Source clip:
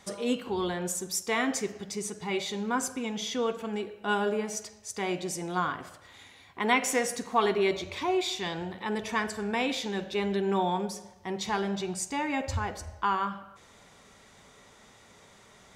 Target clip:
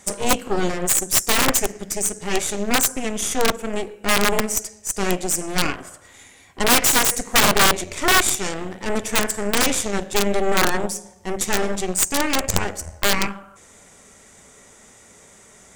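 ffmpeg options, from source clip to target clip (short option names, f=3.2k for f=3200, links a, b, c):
-af "aeval=exprs='0.316*(cos(1*acos(clip(val(0)/0.316,-1,1)))-cos(1*PI/2))+0.0158*(cos(2*acos(clip(val(0)/0.316,-1,1)))-cos(2*PI/2))+0.1*(cos(8*acos(clip(val(0)/0.316,-1,1)))-cos(8*PI/2))':c=same,equalizer=f=125:t=o:w=1:g=-4,equalizer=f=1k:t=o:w=1:g=-5,equalizer=f=4k:t=o:w=1:g=-9,equalizer=f=8k:t=o:w=1:g=11,aeval=exprs='(mod(5.01*val(0)+1,2)-1)/5.01':c=same,volume=7dB"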